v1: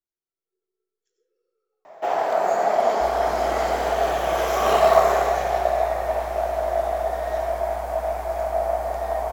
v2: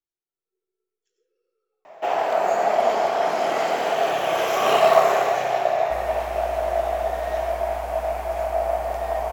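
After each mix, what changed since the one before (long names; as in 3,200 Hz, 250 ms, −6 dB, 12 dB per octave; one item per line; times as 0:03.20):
second sound: entry +2.90 s
master: add parametric band 2,700 Hz +7 dB 0.54 octaves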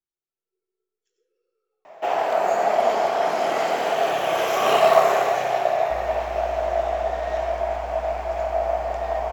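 second sound: add high-frequency loss of the air 95 metres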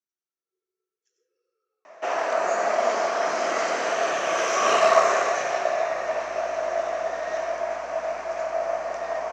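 master: add loudspeaker in its box 240–8,100 Hz, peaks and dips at 420 Hz −4 dB, 800 Hz −9 dB, 1,200 Hz +4 dB, 1,700 Hz +3 dB, 3,300 Hz −5 dB, 6,000 Hz +9 dB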